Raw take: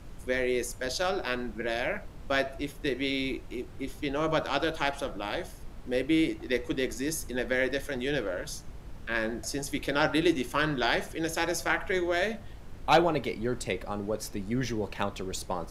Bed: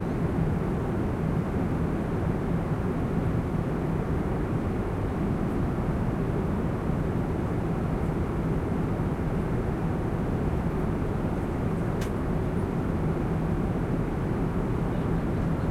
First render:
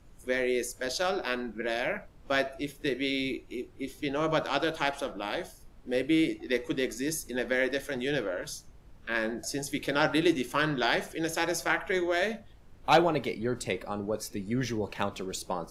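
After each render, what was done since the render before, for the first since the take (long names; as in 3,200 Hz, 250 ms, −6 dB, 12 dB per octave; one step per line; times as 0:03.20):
noise reduction from a noise print 10 dB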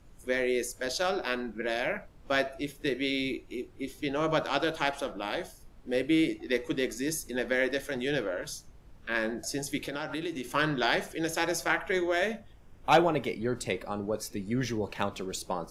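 0:09.84–0:10.50: downward compressor, threshold −31 dBFS
0:12.11–0:13.39: notch filter 4,200 Hz, Q 5.8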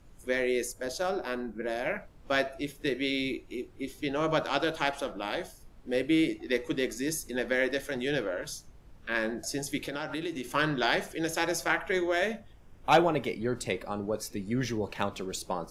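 0:00.73–0:01.86: parametric band 3,100 Hz −8.5 dB 2 octaves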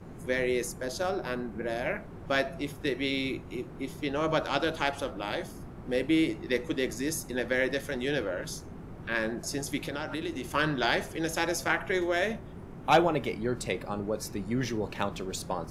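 mix in bed −17 dB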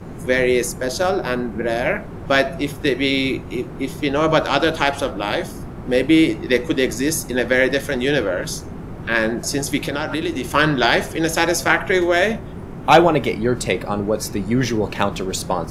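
level +11.5 dB
brickwall limiter −1 dBFS, peak gain reduction 1.5 dB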